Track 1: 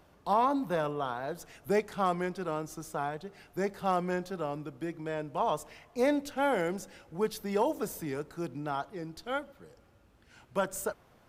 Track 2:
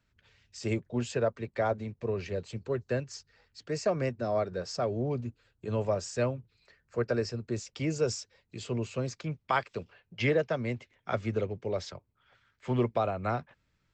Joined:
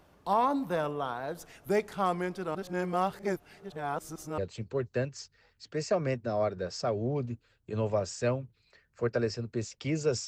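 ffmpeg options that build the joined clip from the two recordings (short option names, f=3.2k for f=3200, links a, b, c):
-filter_complex "[0:a]apad=whole_dur=10.27,atrim=end=10.27,asplit=2[a][b];[a]atrim=end=2.552[c];[b]atrim=start=2.548:end=4.382,asetpts=PTS-STARTPTS,areverse[d];[1:a]atrim=start=2.328:end=8.22[e];[c][d]acrossfade=d=0.004:c1=hsin:c2=hsin[f];[f][e]acrossfade=d=0.004:c1=hsin:c2=hsin"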